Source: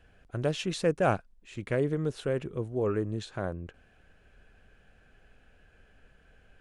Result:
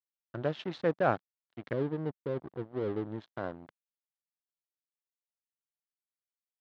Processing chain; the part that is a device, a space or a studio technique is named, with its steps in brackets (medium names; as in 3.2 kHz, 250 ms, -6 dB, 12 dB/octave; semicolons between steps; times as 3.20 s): 1.73–3.07 s: inverse Chebyshev low-pass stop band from 2.5 kHz, stop band 70 dB; blown loudspeaker (crossover distortion -39.5 dBFS; cabinet simulation 130–3900 Hz, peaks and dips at 190 Hz -4 dB, 430 Hz -3 dB, 2.5 kHz -7 dB)